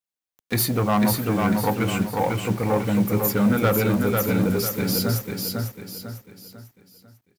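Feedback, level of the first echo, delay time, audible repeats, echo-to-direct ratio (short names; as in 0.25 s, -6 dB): 40%, -3.5 dB, 0.497 s, 4, -2.5 dB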